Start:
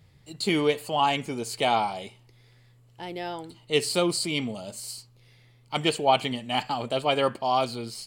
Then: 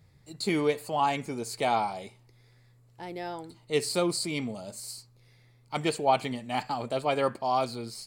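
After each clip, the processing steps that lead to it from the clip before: peaking EQ 3 kHz -9.5 dB 0.34 oct; trim -2.5 dB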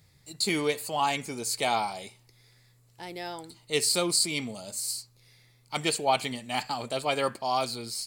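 treble shelf 2.3 kHz +12 dB; trim -2.5 dB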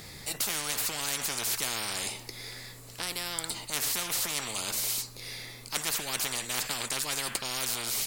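spectrum-flattening compressor 10:1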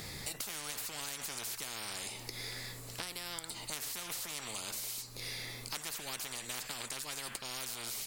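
compression 12:1, threshold -38 dBFS, peak gain reduction 13 dB; trim +1 dB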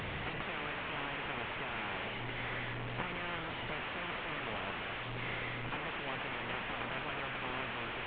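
one-bit delta coder 16 kbps, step -38 dBFS; trim +4.5 dB

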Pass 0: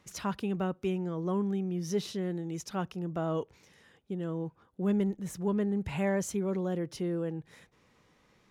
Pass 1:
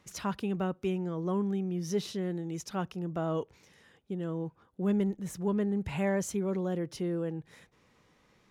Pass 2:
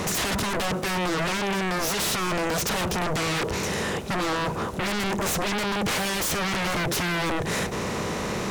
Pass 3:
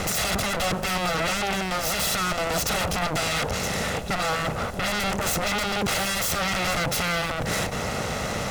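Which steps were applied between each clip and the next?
no audible change
spectral levelling over time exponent 0.6; Chebyshev shaper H 5 -13 dB, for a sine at -17 dBFS; sine folder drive 16 dB, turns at -17 dBFS; trim -5.5 dB
comb filter that takes the minimum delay 1.5 ms; hum 60 Hz, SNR 19 dB; trim +2.5 dB

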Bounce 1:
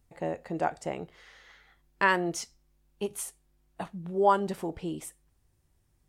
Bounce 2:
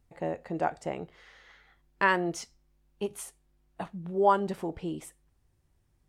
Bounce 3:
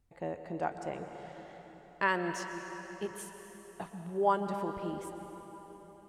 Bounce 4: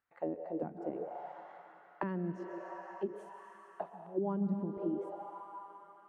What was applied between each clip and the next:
treble shelf 5.2 kHz -6.5 dB
reverberation RT60 4.4 s, pre-delay 108 ms, DRR 6.5 dB; trim -5 dB
auto-wah 200–1500 Hz, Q 2.6, down, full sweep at -30.5 dBFS; trim +6 dB

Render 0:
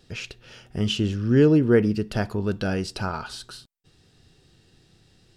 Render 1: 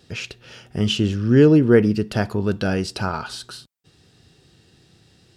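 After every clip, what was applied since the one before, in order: high-pass 65 Hz; trim +4 dB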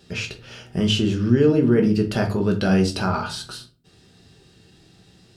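peak limiter -12 dBFS, peak gain reduction 10 dB; simulated room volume 200 m³, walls furnished, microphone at 1.2 m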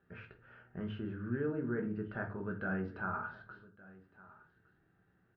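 four-pole ladder low-pass 1.7 kHz, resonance 65%; delay 1161 ms -20.5 dB; trim -8.5 dB

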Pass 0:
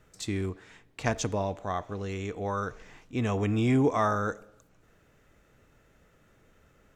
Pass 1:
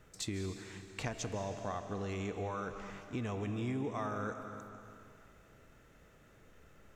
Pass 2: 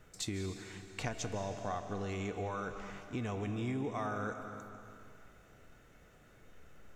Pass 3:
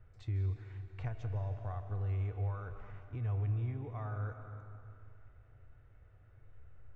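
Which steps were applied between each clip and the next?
compression 6:1, threshold -36 dBFS, peak gain reduction 15 dB; algorithmic reverb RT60 2.6 s, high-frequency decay 1×, pre-delay 110 ms, DRR 7.5 dB
feedback comb 730 Hz, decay 0.19 s, harmonics all, mix 70%; trim +10 dB
low-pass 2 kHz 12 dB/octave; resonant low shelf 140 Hz +10.5 dB, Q 3; trim -8 dB

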